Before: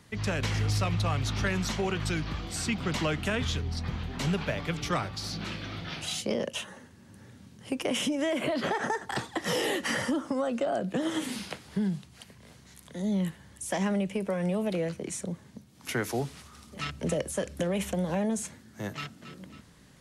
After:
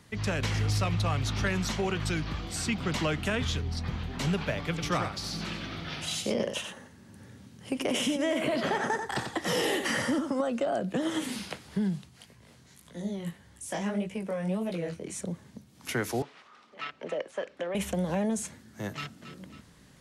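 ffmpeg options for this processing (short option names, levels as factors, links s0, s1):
-filter_complex "[0:a]asettb=1/sr,asplit=3[s0][s1][s2];[s0]atrim=end=4.694[s3];[s1]atrim=start=4.69:end=10.41,asetpts=PTS-STARTPTS,afade=t=in:d=0.004:c=qsin,afade=t=out:st=5.716:d=0.004:c=qsin,aecho=1:1:91:0.447,atrim=end_sample=252252[s4];[s2]atrim=start=10.406[s5];[s3][s4]acrossfade=d=0.004:c1=hsin:c2=qsin[s6];[s6][s5]acrossfade=d=0.004:c1=qsin:c2=hsin,asplit=3[s7][s8][s9];[s7]afade=t=out:st=12.09:d=0.02[s10];[s8]flanger=delay=17:depth=7.3:speed=1.7,afade=t=in:st=12.09:d=0.02,afade=t=out:st=15.15:d=0.02[s11];[s9]afade=t=in:st=15.15:d=0.02[s12];[s10][s11][s12]amix=inputs=3:normalize=0,asettb=1/sr,asplit=3[s13][s14][s15];[s13]atrim=end=16.224[s16];[s14]atrim=start=16.22:end=17.75,asetpts=PTS-STARTPTS,afade=t=in:d=0.004:c=qsin,afade=t=out:st=1.526:d=0.004:c=qsin,highpass=480,lowpass=2800[s17];[s15]atrim=start=17.746[s18];[s16][s17]acrossfade=d=0.004:c1=hsin:c2=qsin[s19];[s19][s18]acrossfade=d=0.004:c1=qsin:c2=hsin"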